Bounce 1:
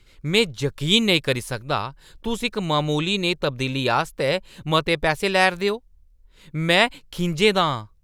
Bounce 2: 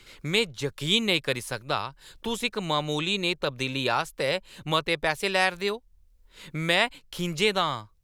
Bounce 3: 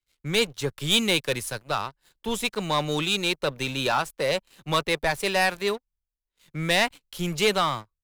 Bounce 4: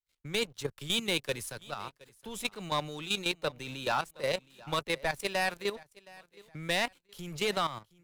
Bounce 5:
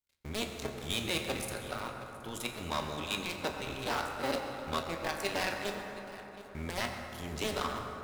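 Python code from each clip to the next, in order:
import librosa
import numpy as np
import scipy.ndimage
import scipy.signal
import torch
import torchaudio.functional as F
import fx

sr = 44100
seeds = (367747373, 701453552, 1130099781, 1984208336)

y1 = fx.low_shelf(x, sr, hz=410.0, db=-6.0)
y1 = fx.band_squash(y1, sr, depth_pct=40)
y1 = F.gain(torch.from_numpy(y1), -3.5).numpy()
y2 = fx.high_shelf(y1, sr, hz=9600.0, db=6.5)
y2 = fx.leveller(y2, sr, passes=3)
y2 = fx.band_widen(y2, sr, depth_pct=70)
y2 = F.gain(torch.from_numpy(y2), -8.0).numpy()
y3 = fx.level_steps(y2, sr, step_db=12)
y3 = fx.echo_feedback(y3, sr, ms=719, feedback_pct=32, wet_db=-22)
y3 = F.gain(torch.from_numpy(y3), -4.5).numpy()
y4 = fx.cycle_switch(y3, sr, every=2, mode='muted')
y4 = 10.0 ** (-28.5 / 20.0) * np.tanh(y4 / 10.0 ** (-28.5 / 20.0))
y4 = fx.rev_fdn(y4, sr, rt60_s=4.0, lf_ratio=1.0, hf_ratio=0.4, size_ms=74.0, drr_db=1.5)
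y4 = F.gain(torch.from_numpy(y4), 2.5).numpy()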